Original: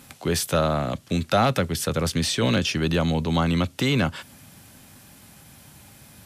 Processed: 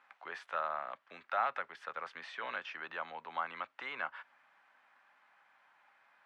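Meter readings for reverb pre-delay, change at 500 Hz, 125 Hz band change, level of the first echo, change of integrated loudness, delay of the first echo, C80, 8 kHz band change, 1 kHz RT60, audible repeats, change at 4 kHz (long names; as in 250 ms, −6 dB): no reverb audible, −20.5 dB, below −40 dB, no echo audible, −16.5 dB, no echo audible, no reverb audible, below −35 dB, no reverb audible, no echo audible, −24.0 dB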